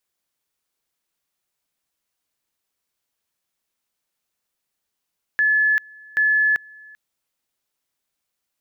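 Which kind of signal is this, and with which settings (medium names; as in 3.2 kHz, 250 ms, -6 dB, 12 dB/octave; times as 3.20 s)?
two-level tone 1.72 kHz -14.5 dBFS, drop 26.5 dB, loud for 0.39 s, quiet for 0.39 s, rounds 2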